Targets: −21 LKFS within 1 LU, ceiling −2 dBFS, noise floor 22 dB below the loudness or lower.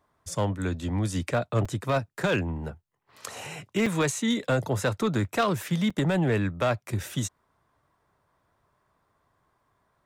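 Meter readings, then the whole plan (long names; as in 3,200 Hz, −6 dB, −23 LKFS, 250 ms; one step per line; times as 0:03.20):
share of clipped samples 0.8%; peaks flattened at −18.0 dBFS; number of dropouts 3; longest dropout 4.7 ms; integrated loudness −27.5 LKFS; sample peak −18.0 dBFS; target loudness −21.0 LKFS
→ clipped peaks rebuilt −18 dBFS
repair the gap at 0:01.65/0:03.86/0:05.90, 4.7 ms
level +6.5 dB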